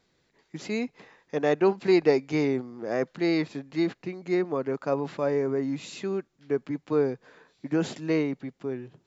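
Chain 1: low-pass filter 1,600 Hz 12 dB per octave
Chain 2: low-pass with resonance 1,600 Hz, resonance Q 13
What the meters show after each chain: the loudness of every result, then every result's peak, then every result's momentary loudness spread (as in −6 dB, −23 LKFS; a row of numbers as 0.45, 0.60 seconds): −28.0, −26.0 LKFS; −9.5, −6.5 dBFS; 12, 13 LU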